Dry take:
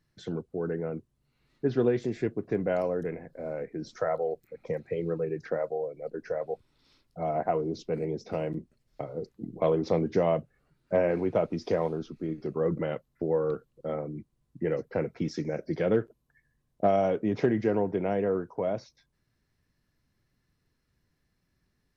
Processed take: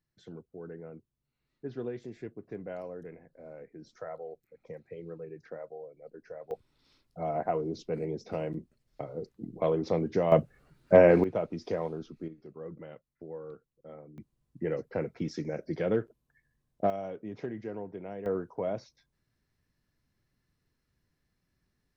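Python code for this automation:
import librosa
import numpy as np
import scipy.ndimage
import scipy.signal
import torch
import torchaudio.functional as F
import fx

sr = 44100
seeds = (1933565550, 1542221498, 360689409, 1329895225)

y = fx.gain(x, sr, db=fx.steps((0.0, -12.0), (6.51, -2.5), (10.32, 7.0), (11.24, -5.0), (12.28, -15.0), (14.18, -3.0), (16.9, -12.5), (18.26, -3.0)))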